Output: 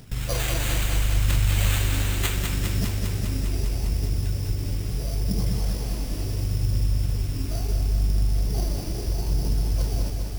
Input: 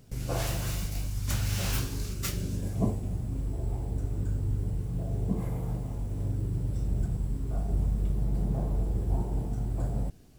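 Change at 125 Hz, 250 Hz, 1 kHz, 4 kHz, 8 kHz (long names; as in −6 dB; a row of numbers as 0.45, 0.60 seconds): +5.0, +2.0, +5.0, +10.0, +8.0 decibels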